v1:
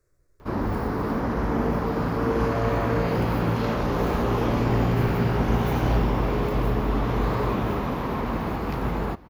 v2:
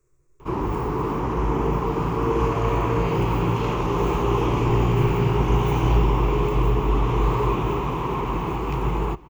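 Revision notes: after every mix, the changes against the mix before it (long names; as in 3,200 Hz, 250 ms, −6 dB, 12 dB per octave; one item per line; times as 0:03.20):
master: add EQ curve with evenly spaced ripples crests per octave 0.7, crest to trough 11 dB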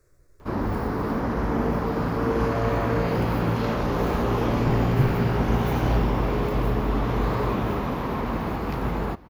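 speech +7.5 dB
master: remove EQ curve with evenly spaced ripples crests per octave 0.7, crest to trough 11 dB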